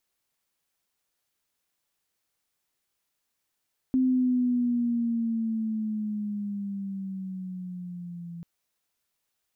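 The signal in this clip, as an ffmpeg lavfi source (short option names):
-f lavfi -i "aevalsrc='pow(10,(-19.5-17*t/4.49)/20)*sin(2*PI*260*4.49/(-7.5*log(2)/12)*(exp(-7.5*log(2)/12*t/4.49)-1))':d=4.49:s=44100"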